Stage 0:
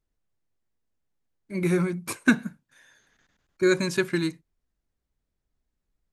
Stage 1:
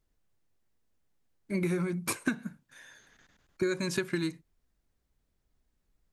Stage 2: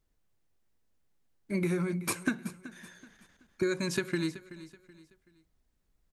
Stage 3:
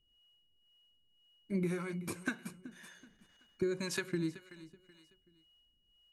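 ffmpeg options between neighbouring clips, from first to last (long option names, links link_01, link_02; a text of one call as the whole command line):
ffmpeg -i in.wav -af "acompressor=threshold=-31dB:ratio=10,volume=4dB" out.wav
ffmpeg -i in.wav -af "aecho=1:1:378|756|1134:0.158|0.0555|0.0194" out.wav
ffmpeg -i in.wav -filter_complex "[0:a]aeval=exprs='val(0)+0.000631*sin(2*PI*2900*n/s)':channel_layout=same,acrossover=split=480[link_01][link_02];[link_01]aeval=exprs='val(0)*(1-0.7/2+0.7/2*cos(2*PI*1.9*n/s))':channel_layout=same[link_03];[link_02]aeval=exprs='val(0)*(1-0.7/2-0.7/2*cos(2*PI*1.9*n/s))':channel_layout=same[link_04];[link_03][link_04]amix=inputs=2:normalize=0,volume=-2dB" out.wav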